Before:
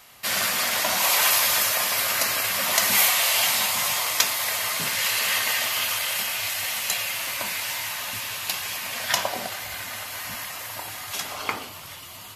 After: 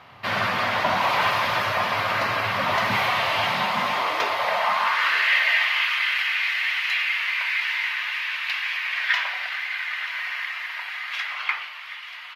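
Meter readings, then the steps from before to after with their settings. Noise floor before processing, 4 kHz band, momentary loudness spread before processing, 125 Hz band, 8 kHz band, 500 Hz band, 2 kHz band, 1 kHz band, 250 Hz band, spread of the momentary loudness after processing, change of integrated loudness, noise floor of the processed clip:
-41 dBFS, -2.5 dB, 14 LU, +6.0 dB, -21.5 dB, +4.0 dB, +5.0 dB, +6.0 dB, +4.0 dB, 9 LU, 0.0 dB, -38 dBFS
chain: peaking EQ 1 kHz +5 dB 1 oct; band-stop 7.3 kHz, Q 21; modulation noise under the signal 17 dB; saturation -16 dBFS, distortion -15 dB; distance through air 340 m; high-pass sweep 100 Hz -> 2 kHz, 3.38–5.32 s; delay 935 ms -14 dB; trim +5.5 dB

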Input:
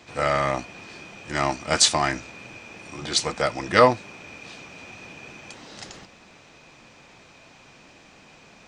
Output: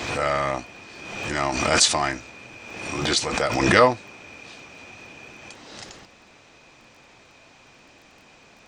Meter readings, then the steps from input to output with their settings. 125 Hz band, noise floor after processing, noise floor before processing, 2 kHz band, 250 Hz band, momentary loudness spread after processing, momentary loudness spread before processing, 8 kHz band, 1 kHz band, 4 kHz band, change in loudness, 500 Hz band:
+1.5 dB, -53 dBFS, -52 dBFS, +3.0 dB, +3.5 dB, 24 LU, 23 LU, +0.5 dB, 0.0 dB, +0.5 dB, +0.5 dB, 0.0 dB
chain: peaking EQ 170 Hz -5 dB 0.54 oct; crackle 12 per s -43 dBFS; swell ahead of each attack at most 42 dB/s; trim -1 dB

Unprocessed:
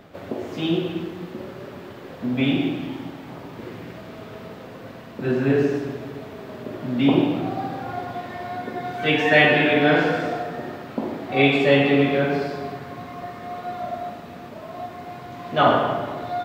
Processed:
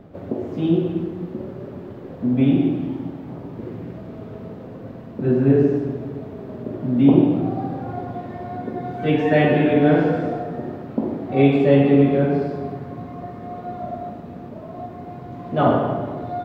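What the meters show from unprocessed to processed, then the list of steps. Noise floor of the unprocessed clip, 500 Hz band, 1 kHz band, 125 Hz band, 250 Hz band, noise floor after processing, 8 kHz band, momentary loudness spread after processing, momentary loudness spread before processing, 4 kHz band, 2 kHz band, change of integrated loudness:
-39 dBFS, +2.0 dB, -2.0 dB, +6.0 dB, +4.5 dB, -37 dBFS, no reading, 20 LU, 21 LU, -11.0 dB, -9.0 dB, +1.5 dB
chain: tilt shelf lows +9.5 dB, about 890 Hz; trim -3 dB

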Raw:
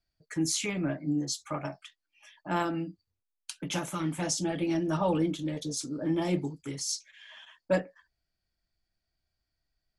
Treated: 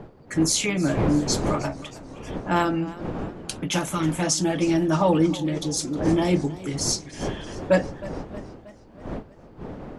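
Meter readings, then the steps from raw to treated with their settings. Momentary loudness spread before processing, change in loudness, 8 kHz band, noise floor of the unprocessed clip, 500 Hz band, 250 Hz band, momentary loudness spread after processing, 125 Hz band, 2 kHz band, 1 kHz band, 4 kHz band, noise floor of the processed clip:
18 LU, +7.5 dB, +7.5 dB, -85 dBFS, +8.5 dB, +8.0 dB, 17 LU, +9.0 dB, +8.0 dB, +8.0 dB, +7.5 dB, -49 dBFS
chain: wind noise 420 Hz -41 dBFS; modulated delay 314 ms, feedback 57%, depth 85 cents, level -18 dB; trim +7.5 dB

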